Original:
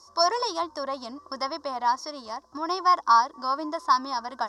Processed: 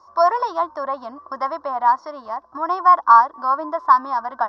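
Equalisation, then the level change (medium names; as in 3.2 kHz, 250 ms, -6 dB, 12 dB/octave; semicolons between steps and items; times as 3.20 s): low-pass 2.6 kHz 12 dB/octave; high-order bell 990 Hz +8 dB; 0.0 dB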